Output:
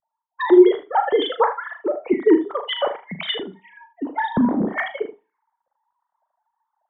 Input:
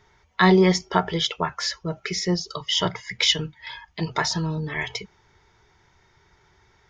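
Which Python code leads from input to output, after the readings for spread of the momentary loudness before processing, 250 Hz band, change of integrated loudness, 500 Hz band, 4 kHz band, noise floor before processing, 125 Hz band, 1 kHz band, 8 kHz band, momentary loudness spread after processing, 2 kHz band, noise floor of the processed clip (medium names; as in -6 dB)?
14 LU, +5.0 dB, +3.0 dB, +7.5 dB, -5.5 dB, -61 dBFS, -11.5 dB, +3.5 dB, under -40 dB, 15 LU, -1.5 dB, -82 dBFS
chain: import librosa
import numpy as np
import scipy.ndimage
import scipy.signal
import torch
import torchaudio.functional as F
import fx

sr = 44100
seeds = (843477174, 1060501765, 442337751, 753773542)

y = fx.sine_speech(x, sr)
y = fx.env_lowpass(y, sr, base_hz=400.0, full_db=-18.5)
y = fx.peak_eq(y, sr, hz=1400.0, db=-5.5, octaves=0.79)
y = fx.rider(y, sr, range_db=5, speed_s=0.5)
y = fx.env_phaser(y, sr, low_hz=400.0, high_hz=2600.0, full_db=-28.5)
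y = fx.room_early_taps(y, sr, ms=(37, 78), db=(-9.5, -12.5))
y = fx.rev_schroeder(y, sr, rt60_s=0.3, comb_ms=28, drr_db=16.5)
y = y * 10.0 ** (6.5 / 20.0)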